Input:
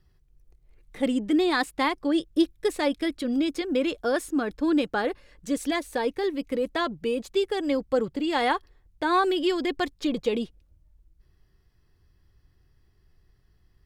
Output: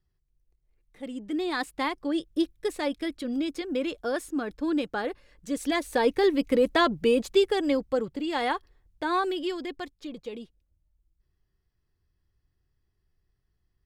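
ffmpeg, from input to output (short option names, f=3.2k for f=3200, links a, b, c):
-af "volume=5dB,afade=t=in:st=1.06:d=0.63:silence=0.354813,afade=t=in:st=5.49:d=0.72:silence=0.354813,afade=t=out:st=7.16:d=0.85:silence=0.375837,afade=t=out:st=9.09:d=0.9:silence=0.375837"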